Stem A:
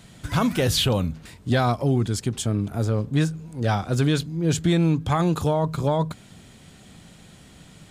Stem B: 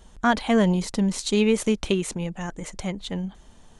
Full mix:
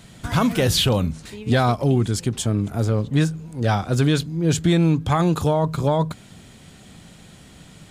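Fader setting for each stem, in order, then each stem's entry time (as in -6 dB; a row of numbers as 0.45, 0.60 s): +2.5, -16.5 dB; 0.00, 0.00 s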